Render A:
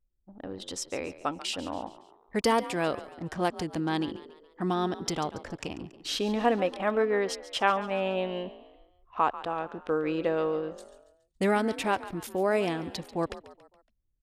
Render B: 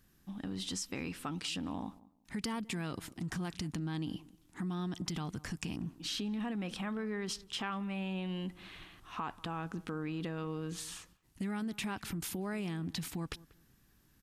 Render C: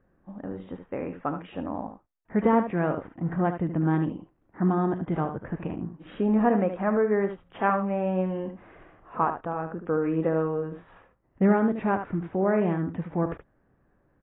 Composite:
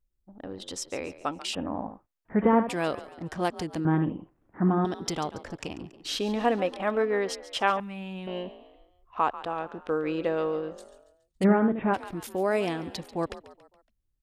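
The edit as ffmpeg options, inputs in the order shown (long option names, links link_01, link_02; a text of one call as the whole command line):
ffmpeg -i take0.wav -i take1.wav -i take2.wav -filter_complex "[2:a]asplit=3[link_01][link_02][link_03];[0:a]asplit=5[link_04][link_05][link_06][link_07][link_08];[link_04]atrim=end=1.552[link_09];[link_01]atrim=start=1.548:end=2.692[link_10];[link_05]atrim=start=2.688:end=3.852[link_11];[link_02]atrim=start=3.848:end=4.852[link_12];[link_06]atrim=start=4.848:end=7.802[link_13];[1:a]atrim=start=7.798:end=8.272[link_14];[link_07]atrim=start=8.268:end=11.45[link_15];[link_03]atrim=start=11.43:end=11.95[link_16];[link_08]atrim=start=11.93[link_17];[link_09][link_10]acrossfade=duration=0.004:curve1=hsin:curve2=hsin[link_18];[link_18][link_11]acrossfade=duration=0.004:curve1=hsin:curve2=hsin[link_19];[link_19][link_12]acrossfade=duration=0.004:curve1=hsin:curve2=hsin[link_20];[link_20][link_13]acrossfade=duration=0.004:curve1=hsin:curve2=hsin[link_21];[link_21][link_14]acrossfade=duration=0.004:curve1=hsin:curve2=hsin[link_22];[link_22][link_15]acrossfade=duration=0.004:curve1=hsin:curve2=hsin[link_23];[link_23][link_16]acrossfade=duration=0.02:curve1=tri:curve2=tri[link_24];[link_24][link_17]acrossfade=duration=0.02:curve1=tri:curve2=tri" out.wav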